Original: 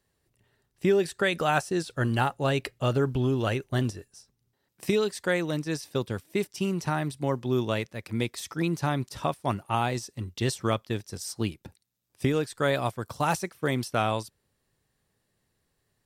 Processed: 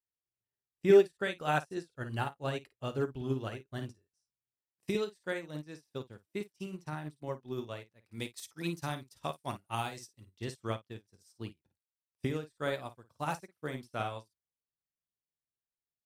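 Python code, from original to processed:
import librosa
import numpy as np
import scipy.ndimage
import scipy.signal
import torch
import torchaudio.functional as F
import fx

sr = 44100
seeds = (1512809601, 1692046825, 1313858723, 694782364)

y = fx.high_shelf(x, sr, hz=3000.0, db=10.5, at=(8.12, 10.38))
y = fx.room_early_taps(y, sr, ms=(20, 53), db=(-16.5, -6.5))
y = fx.upward_expand(y, sr, threshold_db=-38.0, expansion=2.5)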